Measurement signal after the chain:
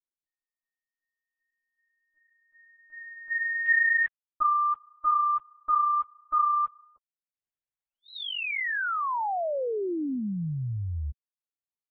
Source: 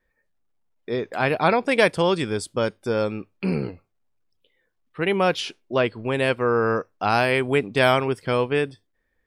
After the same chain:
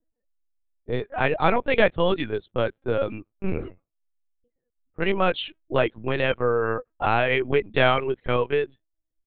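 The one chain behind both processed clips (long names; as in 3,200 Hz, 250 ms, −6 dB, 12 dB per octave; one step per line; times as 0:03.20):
low-pass that shuts in the quiet parts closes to 400 Hz, open at −19.5 dBFS
reverb reduction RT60 0.74 s
linear-prediction vocoder at 8 kHz pitch kept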